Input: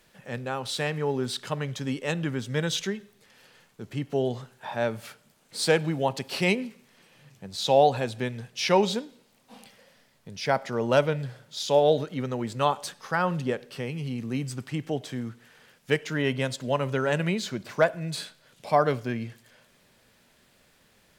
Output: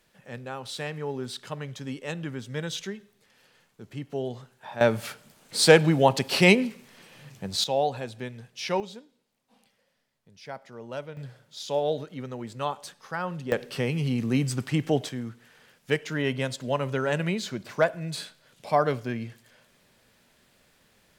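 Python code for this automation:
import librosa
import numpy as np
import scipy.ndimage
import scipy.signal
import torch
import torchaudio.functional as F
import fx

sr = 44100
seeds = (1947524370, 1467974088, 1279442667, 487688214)

y = fx.gain(x, sr, db=fx.steps((0.0, -5.0), (4.81, 6.5), (7.64, -6.0), (8.8, -14.5), (11.17, -6.0), (13.52, 5.5), (15.09, -1.0)))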